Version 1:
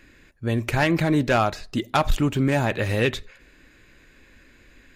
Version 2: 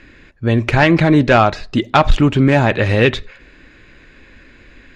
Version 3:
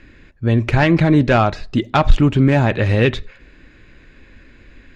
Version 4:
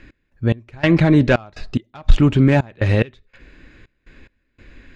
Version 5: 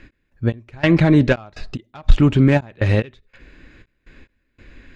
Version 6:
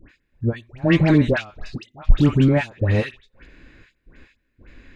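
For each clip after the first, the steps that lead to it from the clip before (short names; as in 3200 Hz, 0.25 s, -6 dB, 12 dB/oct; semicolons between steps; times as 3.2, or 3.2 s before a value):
LPF 4400 Hz 12 dB/oct; gain +9 dB
low shelf 270 Hz +6 dB; gain -4.5 dB
step gate "x..xx...xxxx" 144 bpm -24 dB
ending taper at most 470 dB/s
dispersion highs, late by 98 ms, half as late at 1300 Hz; gain -2 dB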